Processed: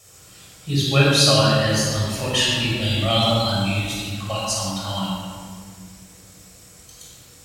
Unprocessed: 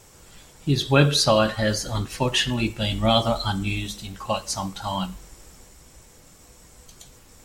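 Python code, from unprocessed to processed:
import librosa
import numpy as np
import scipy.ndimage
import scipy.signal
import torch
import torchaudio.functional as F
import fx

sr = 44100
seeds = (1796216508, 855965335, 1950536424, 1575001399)

y = scipy.signal.sosfilt(scipy.signal.butter(2, 60.0, 'highpass', fs=sr, output='sos'), x)
y = fx.high_shelf(y, sr, hz=2300.0, db=10.5)
y = fx.room_shoebox(y, sr, seeds[0], volume_m3=3100.0, walls='mixed', distance_m=6.2)
y = y * 10.0 ** (-9.5 / 20.0)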